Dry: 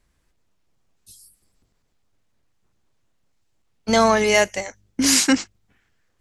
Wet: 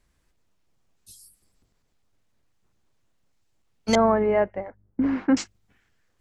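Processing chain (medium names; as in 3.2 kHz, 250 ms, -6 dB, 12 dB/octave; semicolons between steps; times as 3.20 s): 3.95–5.37 s: Bessel low-pass 990 Hz, order 4; trim -1.5 dB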